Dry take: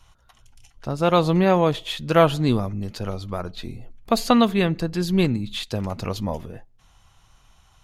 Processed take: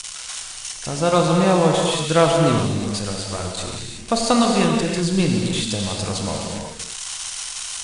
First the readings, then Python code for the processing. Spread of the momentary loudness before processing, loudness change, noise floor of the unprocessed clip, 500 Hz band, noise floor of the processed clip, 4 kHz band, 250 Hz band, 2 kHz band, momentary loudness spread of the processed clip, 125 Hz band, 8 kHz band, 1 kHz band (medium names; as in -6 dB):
15 LU, +1.5 dB, -57 dBFS, +2.5 dB, -35 dBFS, +6.5 dB, +2.0 dB, +3.0 dB, 13 LU, +2.0 dB, +16.0 dB, +2.5 dB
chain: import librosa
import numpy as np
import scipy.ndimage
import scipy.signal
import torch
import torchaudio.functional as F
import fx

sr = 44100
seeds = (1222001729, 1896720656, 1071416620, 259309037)

y = x + 0.5 * 10.0 ** (-16.5 / 20.0) * np.diff(np.sign(x), prepend=np.sign(x[:1]))
y = scipy.signal.sosfilt(scipy.signal.butter(16, 9800.0, 'lowpass', fs=sr, output='sos'), y)
y = fx.rev_gated(y, sr, seeds[0], gate_ms=400, shape='flat', drr_db=0.0)
y = F.gain(torch.from_numpy(y), -1.0).numpy()